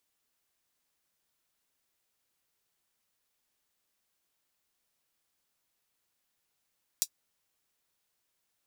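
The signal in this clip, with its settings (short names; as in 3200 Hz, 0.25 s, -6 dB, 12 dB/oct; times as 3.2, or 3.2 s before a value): closed hi-hat, high-pass 5200 Hz, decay 0.07 s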